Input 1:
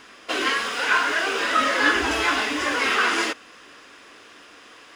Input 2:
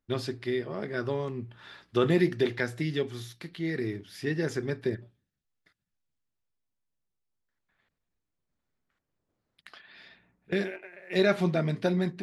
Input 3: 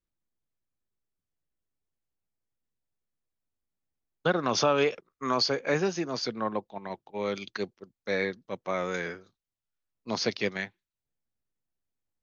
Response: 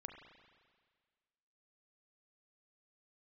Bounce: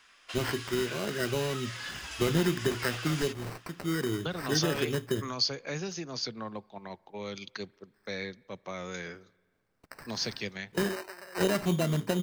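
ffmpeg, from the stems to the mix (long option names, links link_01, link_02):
-filter_complex "[0:a]equalizer=frequency=320:width=0.55:gain=-15,acrossover=split=170|3000[link_01][link_02][link_03];[link_02]acompressor=threshold=-33dB:ratio=6[link_04];[link_01][link_04][link_03]amix=inputs=3:normalize=0,volume=-10.5dB[link_05];[1:a]highshelf=frequency=5400:gain=9,acrossover=split=180|3000[link_06][link_07][link_08];[link_07]acompressor=threshold=-27dB:ratio=6[link_09];[link_06][link_09][link_08]amix=inputs=3:normalize=0,acrusher=samples=13:mix=1:aa=0.000001,adelay=250,volume=1dB[link_10];[2:a]acrossover=split=160|3000[link_11][link_12][link_13];[link_12]acompressor=threshold=-42dB:ratio=2.5[link_14];[link_11][link_14][link_13]amix=inputs=3:normalize=0,volume=-0.5dB,asplit=2[link_15][link_16];[link_16]volume=-15dB[link_17];[3:a]atrim=start_sample=2205[link_18];[link_17][link_18]afir=irnorm=-1:irlink=0[link_19];[link_05][link_10][link_15][link_19]amix=inputs=4:normalize=0"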